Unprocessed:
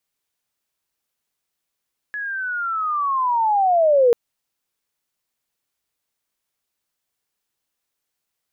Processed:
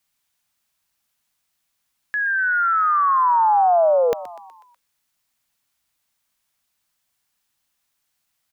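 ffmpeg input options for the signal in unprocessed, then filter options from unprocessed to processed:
-f lavfi -i "aevalsrc='pow(10,(-25+14.5*t/1.99)/20)*sin(2*PI*(1700*t-1240*t*t/(2*1.99)))':duration=1.99:sample_rate=44100"
-filter_complex "[0:a]equalizer=frequency=420:width_type=o:width=0.68:gain=-12.5,asplit=2[link_01][link_02];[link_02]alimiter=limit=-22dB:level=0:latency=1:release=123,volume=0dB[link_03];[link_01][link_03]amix=inputs=2:normalize=0,asplit=6[link_04][link_05][link_06][link_07][link_08][link_09];[link_05]adelay=123,afreqshift=97,volume=-16dB[link_10];[link_06]adelay=246,afreqshift=194,volume=-21.4dB[link_11];[link_07]adelay=369,afreqshift=291,volume=-26.7dB[link_12];[link_08]adelay=492,afreqshift=388,volume=-32.1dB[link_13];[link_09]adelay=615,afreqshift=485,volume=-37.4dB[link_14];[link_04][link_10][link_11][link_12][link_13][link_14]amix=inputs=6:normalize=0"

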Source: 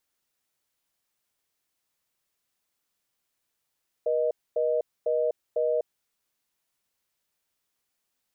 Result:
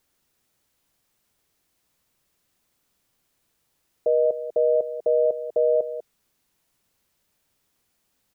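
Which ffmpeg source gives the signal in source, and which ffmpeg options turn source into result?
-f lavfi -i "aevalsrc='0.0562*(sin(2*PI*480*t)+sin(2*PI*620*t))*clip(min(mod(t,0.5),0.25-mod(t,0.5))/0.005,0,1)':duration=1.86:sample_rate=44100"
-filter_complex "[0:a]lowshelf=frequency=440:gain=8.5,asplit=2[link_01][link_02];[link_02]alimiter=level_in=3.5dB:limit=-24dB:level=0:latency=1:release=17,volume=-3.5dB,volume=1.5dB[link_03];[link_01][link_03]amix=inputs=2:normalize=0,aecho=1:1:195:0.251"

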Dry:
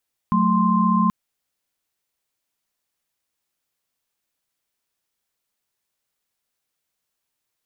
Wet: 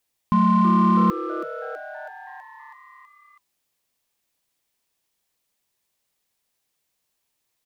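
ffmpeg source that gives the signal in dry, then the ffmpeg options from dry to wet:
-f lavfi -i "aevalsrc='0.106*(sin(2*PI*185*t)+sin(2*PI*220*t)+sin(2*PI*1046.5*t))':duration=0.78:sample_rate=44100"
-filter_complex "[0:a]equalizer=frequency=1400:width=4.3:gain=-5.5,asplit=2[link_01][link_02];[link_02]asoftclip=type=hard:threshold=-27dB,volume=-6dB[link_03];[link_01][link_03]amix=inputs=2:normalize=0,asplit=8[link_04][link_05][link_06][link_07][link_08][link_09][link_10][link_11];[link_05]adelay=325,afreqshift=140,volume=-13dB[link_12];[link_06]adelay=650,afreqshift=280,volume=-17dB[link_13];[link_07]adelay=975,afreqshift=420,volume=-21dB[link_14];[link_08]adelay=1300,afreqshift=560,volume=-25dB[link_15];[link_09]adelay=1625,afreqshift=700,volume=-29.1dB[link_16];[link_10]adelay=1950,afreqshift=840,volume=-33.1dB[link_17];[link_11]adelay=2275,afreqshift=980,volume=-37.1dB[link_18];[link_04][link_12][link_13][link_14][link_15][link_16][link_17][link_18]amix=inputs=8:normalize=0"

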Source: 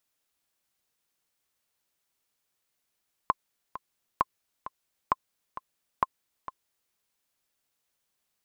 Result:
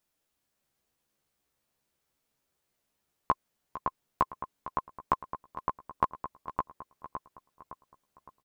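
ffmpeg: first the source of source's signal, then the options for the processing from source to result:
-f lavfi -i "aevalsrc='pow(10,(-9-14*gte(mod(t,2*60/132),60/132))/20)*sin(2*PI*1050*mod(t,60/132))*exp(-6.91*mod(t,60/132)/0.03)':duration=3.63:sample_rate=44100"
-filter_complex "[0:a]tiltshelf=frequency=810:gain=4,asplit=2[link_01][link_02];[link_02]adelay=14,volume=-3.5dB[link_03];[link_01][link_03]amix=inputs=2:normalize=0,asplit=2[link_04][link_05];[link_05]adelay=562,lowpass=frequency=2500:poles=1,volume=-4dB,asplit=2[link_06][link_07];[link_07]adelay=562,lowpass=frequency=2500:poles=1,volume=0.45,asplit=2[link_08][link_09];[link_09]adelay=562,lowpass=frequency=2500:poles=1,volume=0.45,asplit=2[link_10][link_11];[link_11]adelay=562,lowpass=frequency=2500:poles=1,volume=0.45,asplit=2[link_12][link_13];[link_13]adelay=562,lowpass=frequency=2500:poles=1,volume=0.45,asplit=2[link_14][link_15];[link_15]adelay=562,lowpass=frequency=2500:poles=1,volume=0.45[link_16];[link_06][link_08][link_10][link_12][link_14][link_16]amix=inputs=6:normalize=0[link_17];[link_04][link_17]amix=inputs=2:normalize=0"

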